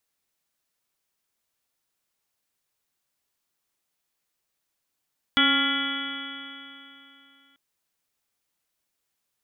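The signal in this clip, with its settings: stretched partials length 2.19 s, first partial 272 Hz, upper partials -15/-11.5/-10.5/2/-9/-2/-6/-20/-3/3.5 dB, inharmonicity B 0.0021, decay 3.03 s, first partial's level -23.5 dB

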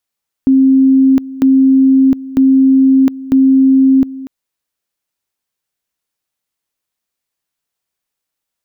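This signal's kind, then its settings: two-level tone 266 Hz -5 dBFS, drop 18 dB, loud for 0.71 s, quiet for 0.24 s, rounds 4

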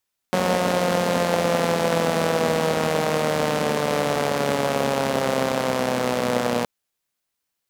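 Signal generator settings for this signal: four-cylinder engine model, changing speed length 6.32 s, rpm 5500, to 3600, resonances 230/500 Hz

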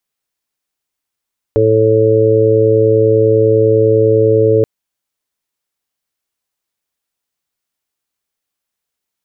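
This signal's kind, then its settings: steady additive tone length 3.08 s, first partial 110 Hz, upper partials -14.5/-2.5/6/-1 dB, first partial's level -15 dB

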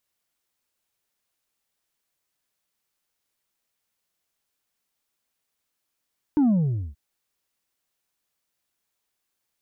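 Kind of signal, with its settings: sub drop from 310 Hz, over 0.58 s, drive 3 dB, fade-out 0.48 s, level -16.5 dB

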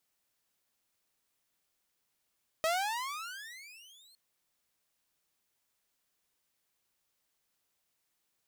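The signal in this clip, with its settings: gliding synth tone saw, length 1.51 s, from 627 Hz, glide +33.5 st, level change -32 dB, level -24 dB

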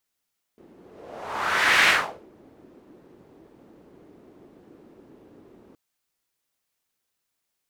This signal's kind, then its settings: whoosh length 5.17 s, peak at 1.29, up 1.20 s, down 0.41 s, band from 330 Hz, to 2000 Hz, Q 2.2, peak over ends 34.5 dB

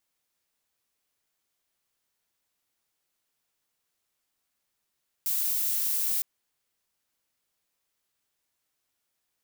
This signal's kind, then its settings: noise violet, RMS -27.5 dBFS 0.96 s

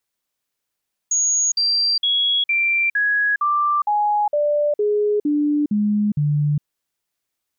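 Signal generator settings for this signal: stepped sine 6670 Hz down, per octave 2, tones 12, 0.41 s, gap 0.05 s -15.5 dBFS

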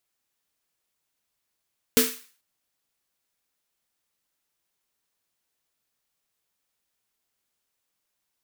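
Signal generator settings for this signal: snare drum length 0.44 s, tones 250 Hz, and 450 Hz, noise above 1200 Hz, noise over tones 0 dB, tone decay 0.28 s, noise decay 0.44 s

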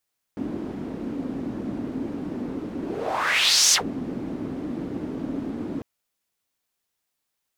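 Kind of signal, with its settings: whoosh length 5.45 s, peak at 3.36, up 0.99 s, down 0.11 s, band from 270 Hz, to 6100 Hz, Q 3.4, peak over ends 14 dB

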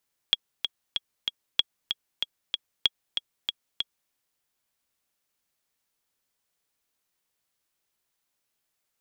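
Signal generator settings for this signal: metronome 190 bpm, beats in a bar 4, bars 3, 3320 Hz, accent 7 dB -6.5 dBFS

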